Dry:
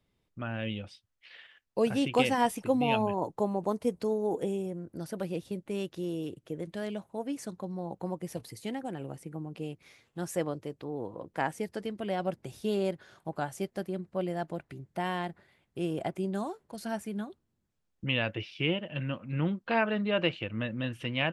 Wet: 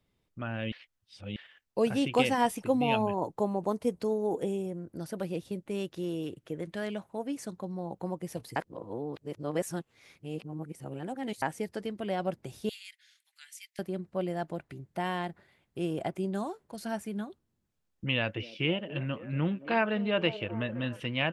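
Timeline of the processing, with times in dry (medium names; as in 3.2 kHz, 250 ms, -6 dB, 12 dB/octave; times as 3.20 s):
0.72–1.36 s: reverse
5.97–7.18 s: peaking EQ 1.7 kHz +4.5 dB 1.6 oct
8.56–11.42 s: reverse
12.69–13.79 s: elliptic high-pass 2 kHz, stop band 80 dB
18.12–21.00 s: repeats whose band climbs or falls 261 ms, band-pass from 350 Hz, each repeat 0.7 oct, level -11 dB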